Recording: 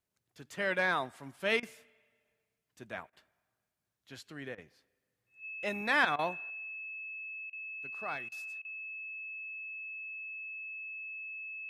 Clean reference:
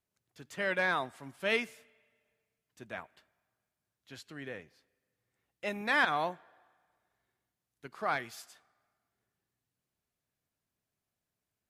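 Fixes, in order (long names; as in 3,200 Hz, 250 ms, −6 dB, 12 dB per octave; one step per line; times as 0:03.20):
notch filter 2,600 Hz, Q 30
repair the gap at 0:01.60/0:03.10/0:04.55/0:06.16/0:07.50/0:08.29/0:08.62, 27 ms
level correction +7.5 dB, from 0:06.50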